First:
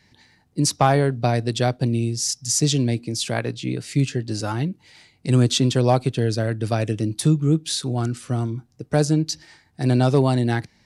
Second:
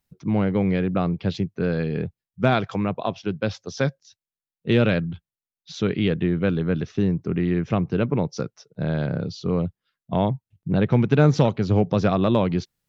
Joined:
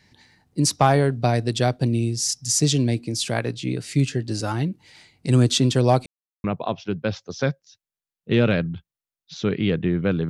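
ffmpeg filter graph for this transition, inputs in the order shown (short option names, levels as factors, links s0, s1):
-filter_complex "[0:a]apad=whole_dur=10.29,atrim=end=10.29,asplit=2[s0][s1];[s0]atrim=end=6.06,asetpts=PTS-STARTPTS,afade=t=out:st=6.056:d=0.004:c=hsin[s2];[s1]atrim=start=6.06:end=6.44,asetpts=PTS-STARTPTS,volume=0[s3];[1:a]atrim=start=2.82:end=6.67,asetpts=PTS-STARTPTS,afade=t=in:d=0.004:c=hsin[s4];[s2][s3][s4]concat=n=3:v=0:a=1"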